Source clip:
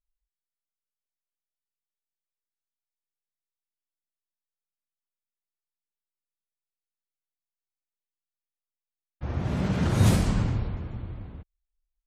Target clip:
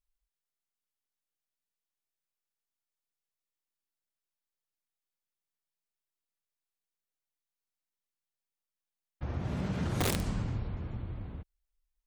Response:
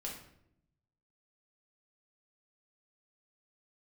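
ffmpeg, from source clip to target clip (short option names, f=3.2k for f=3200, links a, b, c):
-af "aeval=exprs='(mod(4.73*val(0)+1,2)-1)/4.73':c=same,acompressor=threshold=-36dB:ratio=2"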